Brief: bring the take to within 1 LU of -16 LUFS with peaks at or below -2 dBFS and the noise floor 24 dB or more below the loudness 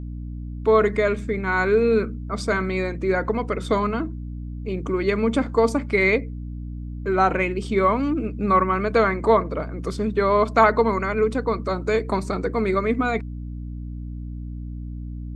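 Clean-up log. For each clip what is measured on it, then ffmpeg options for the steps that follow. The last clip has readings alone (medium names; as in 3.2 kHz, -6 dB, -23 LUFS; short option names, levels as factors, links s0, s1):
hum 60 Hz; highest harmonic 300 Hz; hum level -29 dBFS; loudness -22.0 LUFS; peak level -3.5 dBFS; loudness target -16.0 LUFS
-> -af "bandreject=f=60:t=h:w=6,bandreject=f=120:t=h:w=6,bandreject=f=180:t=h:w=6,bandreject=f=240:t=h:w=6,bandreject=f=300:t=h:w=6"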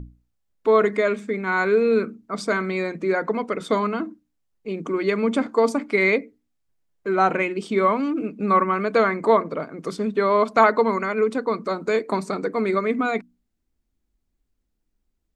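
hum not found; loudness -22.0 LUFS; peak level -4.0 dBFS; loudness target -16.0 LUFS
-> -af "volume=2,alimiter=limit=0.794:level=0:latency=1"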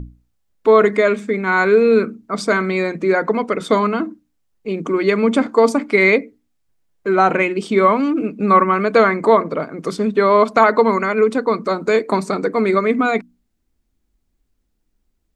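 loudness -16.5 LUFS; peak level -2.0 dBFS; noise floor -69 dBFS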